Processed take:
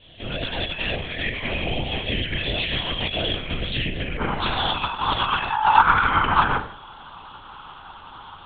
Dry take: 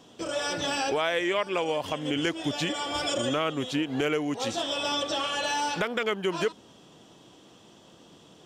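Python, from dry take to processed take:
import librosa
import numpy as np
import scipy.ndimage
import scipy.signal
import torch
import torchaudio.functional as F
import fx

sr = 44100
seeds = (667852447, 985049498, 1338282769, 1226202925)

y = fx.tilt_shelf(x, sr, db=-9.5, hz=650.0)
y = y + 10.0 ** (-13.0 / 20.0) * np.pad(y, (int(90 * sr / 1000.0), 0))[:len(y)]
y = fx.room_shoebox(y, sr, seeds[0], volume_m3=50.0, walls='mixed', distance_m=1.7)
y = fx.lpc_vocoder(y, sr, seeds[1], excitation='whisper', order=8)
y = fx.over_compress(y, sr, threshold_db=-18.0, ratio=-0.5)
y = fx.band_shelf(y, sr, hz=1100.0, db=fx.steps((0.0, -10.0), (4.17, 8.5), (5.49, 15.5)), octaves=1.1)
y = y * librosa.db_to_amplitude(-7.0)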